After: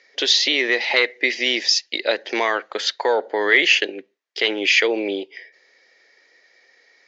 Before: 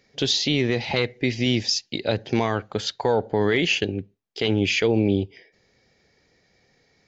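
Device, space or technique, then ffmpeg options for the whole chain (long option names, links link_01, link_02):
phone speaker on a table: -af "highpass=frequency=380:width=0.5412,highpass=frequency=380:width=1.3066,equalizer=frequency=430:width_type=q:width=4:gain=-4,equalizer=frequency=770:width_type=q:width=4:gain=-5,equalizer=frequency=1900:width_type=q:width=4:gain=8,lowpass=frequency=6700:width=0.5412,lowpass=frequency=6700:width=1.3066,lowshelf=frequency=140:gain=-8.5,volume=6dB"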